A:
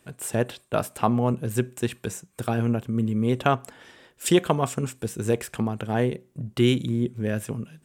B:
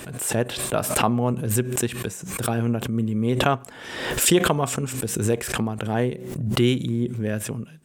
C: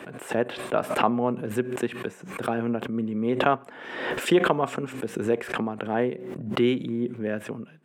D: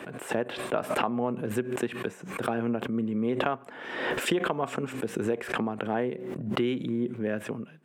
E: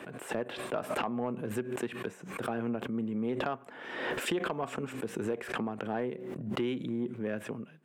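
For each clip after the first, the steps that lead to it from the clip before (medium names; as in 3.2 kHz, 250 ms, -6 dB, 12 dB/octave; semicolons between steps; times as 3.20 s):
swell ahead of each attack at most 48 dB/s
three-band isolator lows -18 dB, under 190 Hz, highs -19 dB, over 2.9 kHz
compression 6:1, threshold -23 dBFS, peak gain reduction 9 dB
saturation -17 dBFS, distortion -20 dB; trim -4 dB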